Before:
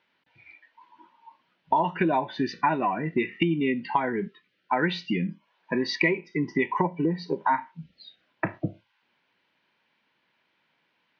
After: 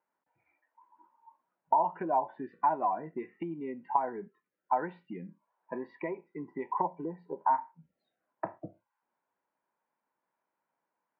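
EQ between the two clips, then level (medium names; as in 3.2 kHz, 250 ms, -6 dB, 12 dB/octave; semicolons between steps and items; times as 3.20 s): tilt EQ +3.5 dB/octave; dynamic bell 750 Hz, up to +6 dB, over -39 dBFS, Q 1.3; four-pole ladder low-pass 1.2 kHz, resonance 25%; -2.0 dB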